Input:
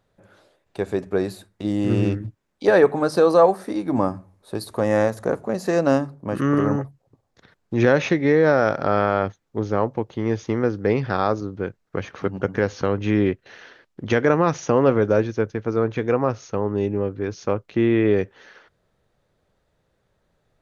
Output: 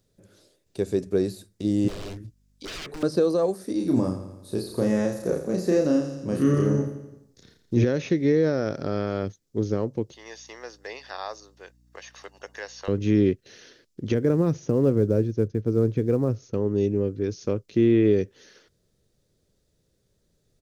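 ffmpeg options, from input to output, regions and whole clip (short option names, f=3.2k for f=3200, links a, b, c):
-filter_complex "[0:a]asettb=1/sr,asplit=3[a][b][c];[a]atrim=end=1.884[d];[b]atrim=start=1.88:end=3.03,asetpts=PTS-STARTPTS,afade=t=in:d=0.004:c=qsin,afade=t=out:st=1.146:d=0.004:c=qsin,aeval=exprs='0.0794*(abs(mod(val(0)/0.0794+3,4)-2)-1)':c=same,equalizer=f=180:w=0.37:g=-10.5,aeval=exprs='val(0)+0.000708*(sin(2*PI*50*n/s)+sin(2*PI*2*50*n/s)/2+sin(2*PI*3*50*n/s)/3+sin(2*PI*4*50*n/s)/4+sin(2*PI*5*50*n/s)/5)':c=same[e];[c]atrim=start=3.026[f];[d][e]acrossfade=d=0.004:c1=hsin:c2=qsin[g];[g][f]acrossfade=d=0.004:c1=qsin:c2=hsin,asettb=1/sr,asplit=3[h][i][j];[h]atrim=end=3.774[k];[i]atrim=start=3.77:end=7.84,asetpts=PTS-STARTPTS,afade=t=in:d=0.004:c=qsin,afade=t=out:st=4.066:d=0.004:c=qsin,asplit=2[l][m];[m]adelay=33,volume=-3dB[n];[l][n]amix=inputs=2:normalize=0,atrim=end_sample=179487,aecho=1:1:84|168|252|336|420|504:0.282|0.149|0.0792|0.042|0.0222|0.0118,atrim=end_sample=179487[o];[j]atrim=start=7.836[p];[k][o]acrossfade=d=0.004:c1=hsin:c2=qsin[q];[q][p]acrossfade=d=0.004:c1=qsin:c2=hsin,asettb=1/sr,asplit=3[r][s][t];[r]atrim=end=10.134[u];[s]atrim=start=10.13:end=12.88,asetpts=PTS-STARTPTS,afade=t=in:d=0.004:c=qsin,afade=t=out:st=2.746:d=0.004:c=qsin,highpass=f=640:w=0.5412,highpass=f=640:w=1.3066,aecho=1:1:1.1:0.45,atrim=end_sample=121275,aeval=exprs='val(0)+0.00112*(sin(2*PI*60*n/s)+sin(2*PI*2*60*n/s)/2+sin(2*PI*3*60*n/s)/3+sin(2*PI*4*60*n/s)/4+sin(2*PI*5*60*n/s)/5)':c=same[v];[t]atrim=start=12.876[w];[u][v]acrossfade=d=0.004:c1=hsin:c2=qsin[x];[x][w]acrossfade=d=0.004:c1=qsin:c2=hsin,asettb=1/sr,asplit=3[y][z][aa];[y]atrim=end=14.144[ab];[z]atrim=start=14.14:end=16.54,asetpts=PTS-STARTPTS,afade=t=in:d=0.004:c=qsin,afade=t=out:st=2.396:d=0.004:c=qsin,acrusher=bits=7:mode=log:mix=0:aa=0.000001,lowpass=f=1k:p=1,equalizer=f=94:t=o:w=2:g=4.5[ac];[aa]atrim=start=16.536[ad];[ab][ac]acrossfade=d=0.004:c1=hsin:c2=qsin[ae];[ae][ad]acrossfade=d=0.004:c1=qsin:c2=hsin,alimiter=limit=-9dB:level=0:latency=1:release=420,firequalizer=gain_entry='entry(400,0);entry(790,-14);entry(5100,7)':delay=0.05:min_phase=1,acrossover=split=3100[af][ag];[ag]acompressor=threshold=-44dB:ratio=4:attack=1:release=60[ah];[af][ah]amix=inputs=2:normalize=0"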